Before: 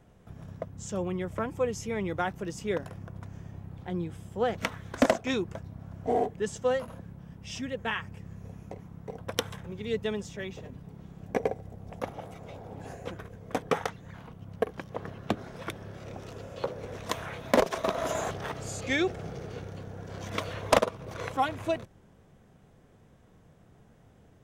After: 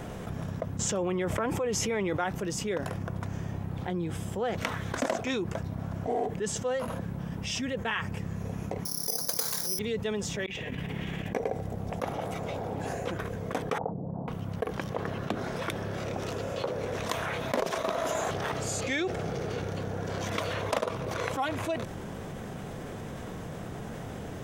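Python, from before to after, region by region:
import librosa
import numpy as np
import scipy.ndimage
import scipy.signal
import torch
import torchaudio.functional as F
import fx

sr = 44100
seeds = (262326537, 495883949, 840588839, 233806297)

y = fx.chain(x, sr, fx.bass_treble(bass_db=-5, treble_db=-4),
    fx.env_flatten(amount_pct=70), at=(0.79, 2.24))
y = fx.chain(y, sr, fx.highpass(hz=210.0, slope=12),
    fx.overload_stage(gain_db=24.0),
    fx.resample_bad(factor=8, down='filtered', up='zero_stuff'), at=(8.85, 9.79))
y = fx.chain(y, sr, fx.band_shelf(hz=2400.0, db=14.0, octaves=1.2),
    fx.over_compress(threshold_db=-46.0, ratio=-0.5), at=(10.46, 11.33))
y = fx.chain(y, sr, fx.steep_lowpass(hz=820.0, slope=36),
    fx.low_shelf_res(hz=110.0, db=-6.0, q=1.5), at=(13.78, 14.28))
y = fx.low_shelf(y, sr, hz=120.0, db=-7.0)
y = fx.env_flatten(y, sr, amount_pct=70)
y = y * librosa.db_to_amplitude(-8.0)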